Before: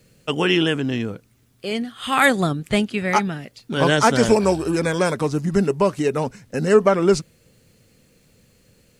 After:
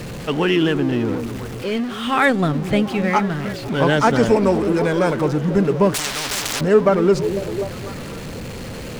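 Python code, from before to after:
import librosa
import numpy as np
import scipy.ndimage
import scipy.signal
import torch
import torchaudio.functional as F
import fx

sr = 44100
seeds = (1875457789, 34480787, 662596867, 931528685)

y = x + 0.5 * 10.0 ** (-23.5 / 20.0) * np.sign(x)
y = fx.lowpass(y, sr, hz=2300.0, slope=6)
y = fx.echo_stepped(y, sr, ms=249, hz=260.0, octaves=0.7, feedback_pct=70, wet_db=-6.5)
y = fx.spectral_comp(y, sr, ratio=10.0, at=(5.94, 6.61))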